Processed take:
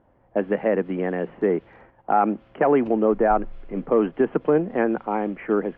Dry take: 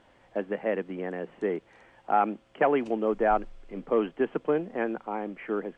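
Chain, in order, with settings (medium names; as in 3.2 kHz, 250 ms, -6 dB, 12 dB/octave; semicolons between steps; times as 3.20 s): level-controlled noise filter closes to 1 kHz, open at -22.5 dBFS; gate -57 dBFS, range -8 dB; low-pass that closes with the level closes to 1.8 kHz, closed at -24.5 dBFS; peaking EQ 73 Hz +5.5 dB 2.8 oct; peak limiter -17 dBFS, peak gain reduction 6.5 dB; trim +7.5 dB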